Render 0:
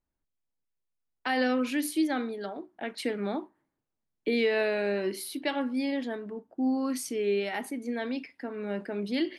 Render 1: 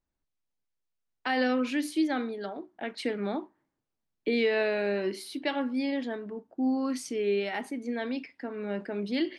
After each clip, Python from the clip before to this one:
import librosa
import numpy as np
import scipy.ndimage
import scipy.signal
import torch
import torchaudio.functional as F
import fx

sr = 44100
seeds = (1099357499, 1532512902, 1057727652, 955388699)

y = scipy.signal.sosfilt(scipy.signal.butter(2, 7300.0, 'lowpass', fs=sr, output='sos'), x)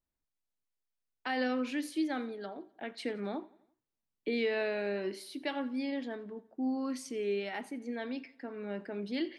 y = fx.echo_feedback(x, sr, ms=86, feedback_pct=53, wet_db=-22.5)
y = y * 10.0 ** (-5.5 / 20.0)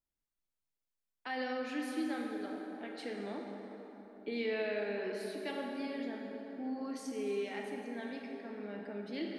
y = fx.rev_plate(x, sr, seeds[0], rt60_s=4.0, hf_ratio=0.55, predelay_ms=0, drr_db=0.0)
y = y * 10.0 ** (-6.0 / 20.0)